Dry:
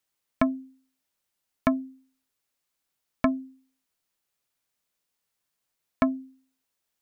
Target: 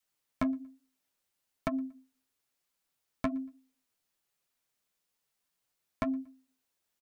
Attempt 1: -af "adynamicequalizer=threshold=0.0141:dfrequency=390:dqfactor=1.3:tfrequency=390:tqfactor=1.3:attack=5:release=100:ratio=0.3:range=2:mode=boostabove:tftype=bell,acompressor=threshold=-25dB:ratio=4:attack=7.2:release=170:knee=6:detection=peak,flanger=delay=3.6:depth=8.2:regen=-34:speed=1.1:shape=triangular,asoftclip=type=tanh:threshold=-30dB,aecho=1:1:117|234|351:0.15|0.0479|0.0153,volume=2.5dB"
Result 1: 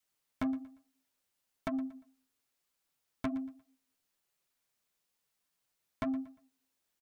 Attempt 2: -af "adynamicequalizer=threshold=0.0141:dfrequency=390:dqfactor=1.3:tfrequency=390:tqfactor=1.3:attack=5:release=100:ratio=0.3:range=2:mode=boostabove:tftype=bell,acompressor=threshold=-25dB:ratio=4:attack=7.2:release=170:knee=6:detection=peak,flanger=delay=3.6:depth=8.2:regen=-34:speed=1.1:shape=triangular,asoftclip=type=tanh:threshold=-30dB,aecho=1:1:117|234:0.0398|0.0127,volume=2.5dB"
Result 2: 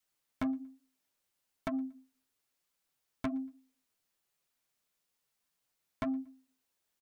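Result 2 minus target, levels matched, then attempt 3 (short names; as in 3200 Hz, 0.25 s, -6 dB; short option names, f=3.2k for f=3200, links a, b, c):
soft clip: distortion +6 dB
-af "adynamicequalizer=threshold=0.0141:dfrequency=390:dqfactor=1.3:tfrequency=390:tqfactor=1.3:attack=5:release=100:ratio=0.3:range=2:mode=boostabove:tftype=bell,acompressor=threshold=-25dB:ratio=4:attack=7.2:release=170:knee=6:detection=peak,flanger=delay=3.6:depth=8.2:regen=-34:speed=1.1:shape=triangular,asoftclip=type=tanh:threshold=-21dB,aecho=1:1:117|234:0.0398|0.0127,volume=2.5dB"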